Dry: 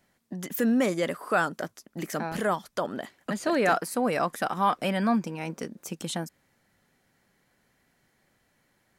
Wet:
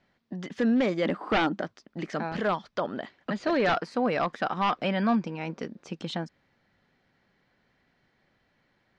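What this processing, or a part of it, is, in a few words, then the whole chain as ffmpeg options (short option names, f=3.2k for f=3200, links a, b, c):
synthesiser wavefolder: -filter_complex "[0:a]asettb=1/sr,asplit=3[a][b][c];[a]atrim=end=1.054[d];[b]atrim=start=1.05:end=1.62,asetpts=PTS-STARTPTS,afade=t=in:d=0.004:c=qsin,afade=t=out:st=0.566:d=0.004:c=qsin,equalizer=f=200:t=o:w=0.33:g=12,equalizer=f=315:t=o:w=0.33:g=12,equalizer=f=800:t=o:w=0.33:g=8,equalizer=f=5k:t=o:w=0.33:g=-6,equalizer=f=12.5k:t=o:w=0.33:g=8[e];[c]atrim=start=1.616[f];[d][e]acrossfade=d=0.004:c1=hsin:c2=qsin[g];[g][f]acrossfade=d=0.004:c1=qsin:c2=hsin,aeval=exprs='0.133*(abs(mod(val(0)/0.133+3,4)-2)-1)':c=same,lowpass=f=4.7k:w=0.5412,lowpass=f=4.7k:w=1.3066"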